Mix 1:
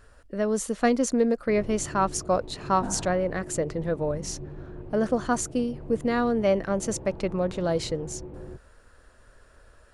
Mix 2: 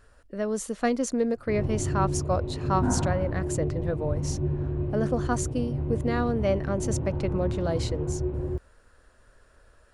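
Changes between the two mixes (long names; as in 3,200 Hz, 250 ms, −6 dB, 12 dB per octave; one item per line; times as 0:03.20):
speech −3.0 dB
reverb: on, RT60 1.1 s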